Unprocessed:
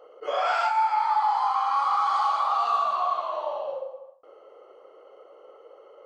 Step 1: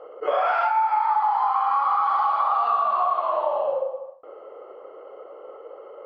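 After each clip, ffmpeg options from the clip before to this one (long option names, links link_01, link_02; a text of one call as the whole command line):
ffmpeg -i in.wav -af "lowpass=2000,acompressor=threshold=-27dB:ratio=6,volume=8.5dB" out.wav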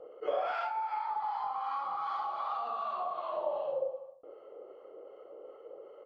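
ffmpeg -i in.wav -filter_complex "[0:a]firequalizer=gain_entry='entry(150,0);entry(1000,-13);entry(3600,-4)':delay=0.05:min_phase=1,acrossover=split=880[link_01][link_02];[link_01]aeval=exprs='val(0)*(1-0.5/2+0.5/2*cos(2*PI*2.6*n/s))':channel_layout=same[link_03];[link_02]aeval=exprs='val(0)*(1-0.5/2-0.5/2*cos(2*PI*2.6*n/s))':channel_layout=same[link_04];[link_03][link_04]amix=inputs=2:normalize=0" out.wav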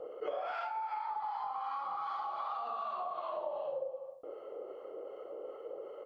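ffmpeg -i in.wav -af "acompressor=threshold=-43dB:ratio=3,volume=5dB" out.wav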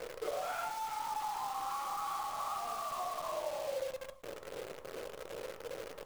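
ffmpeg -i in.wav -af "acrusher=bits=8:dc=4:mix=0:aa=0.000001,flanger=delay=5.9:depth=1.6:regen=-76:speed=0.54:shape=sinusoidal,volume=4dB" out.wav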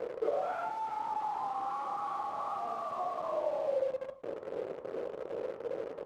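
ffmpeg -i in.wav -af "bandpass=frequency=370:width_type=q:width=0.72:csg=0,volume=7.5dB" out.wav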